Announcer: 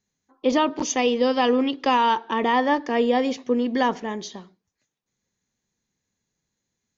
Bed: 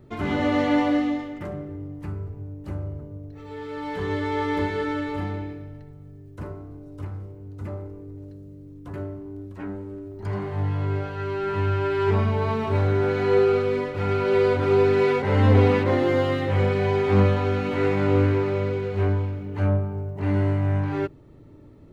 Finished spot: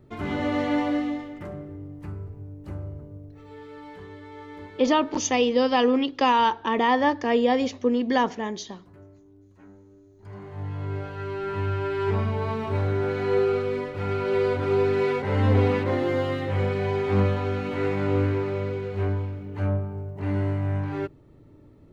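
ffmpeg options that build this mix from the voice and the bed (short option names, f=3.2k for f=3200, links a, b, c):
-filter_complex "[0:a]adelay=4350,volume=-0.5dB[a];[1:a]volume=9.5dB,afade=t=out:st=3.15:d=0.97:silence=0.223872,afade=t=in:st=10.18:d=0.93:silence=0.223872[b];[a][b]amix=inputs=2:normalize=0"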